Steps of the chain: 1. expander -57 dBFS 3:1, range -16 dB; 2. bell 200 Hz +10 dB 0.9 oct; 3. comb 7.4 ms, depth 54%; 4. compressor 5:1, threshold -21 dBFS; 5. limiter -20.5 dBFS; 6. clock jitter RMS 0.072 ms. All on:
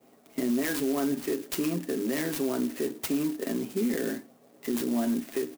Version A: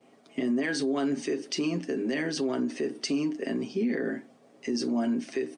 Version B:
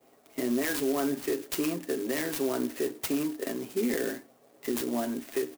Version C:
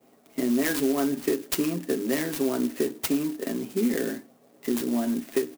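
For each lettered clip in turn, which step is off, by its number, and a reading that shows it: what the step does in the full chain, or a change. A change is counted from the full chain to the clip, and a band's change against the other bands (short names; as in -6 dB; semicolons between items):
6, 4 kHz band +3.5 dB; 2, 125 Hz band -5.5 dB; 5, crest factor change +5.0 dB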